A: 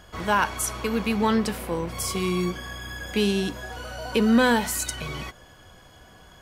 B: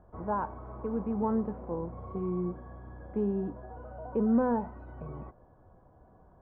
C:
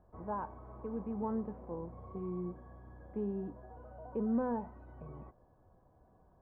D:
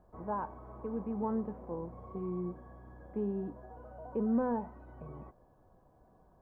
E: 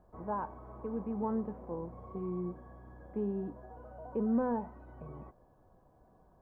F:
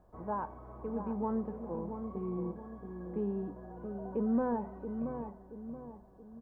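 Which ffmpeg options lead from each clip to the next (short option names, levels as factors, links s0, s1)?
-af "lowpass=f=1000:w=0.5412,lowpass=f=1000:w=1.3066,volume=0.473"
-af "bandreject=f=1400:w=14,volume=0.447"
-af "equalizer=f=85:w=2.2:g=-6.5,volume=1.33"
-af anull
-filter_complex "[0:a]asplit=2[s0][s1];[s1]adelay=677,lowpass=f=1000:p=1,volume=0.447,asplit=2[s2][s3];[s3]adelay=677,lowpass=f=1000:p=1,volume=0.46,asplit=2[s4][s5];[s5]adelay=677,lowpass=f=1000:p=1,volume=0.46,asplit=2[s6][s7];[s7]adelay=677,lowpass=f=1000:p=1,volume=0.46,asplit=2[s8][s9];[s9]adelay=677,lowpass=f=1000:p=1,volume=0.46[s10];[s0][s2][s4][s6][s8][s10]amix=inputs=6:normalize=0"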